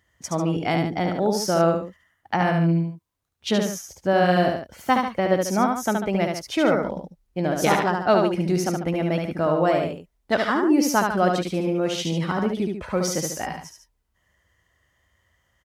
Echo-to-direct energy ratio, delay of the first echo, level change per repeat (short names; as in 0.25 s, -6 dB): -3.0 dB, 72 ms, -6.5 dB